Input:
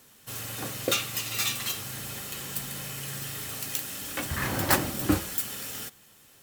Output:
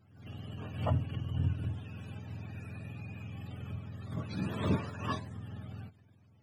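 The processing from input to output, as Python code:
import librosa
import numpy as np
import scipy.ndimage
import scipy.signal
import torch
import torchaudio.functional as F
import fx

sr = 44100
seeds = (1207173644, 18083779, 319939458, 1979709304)

y = fx.octave_mirror(x, sr, pivot_hz=580.0)
y = fx.dynamic_eq(y, sr, hz=4200.0, q=1.3, threshold_db=-56.0, ratio=4.0, max_db=-6)
y = fx.pre_swell(y, sr, db_per_s=90.0)
y = F.gain(torch.from_numpy(y), -6.5).numpy()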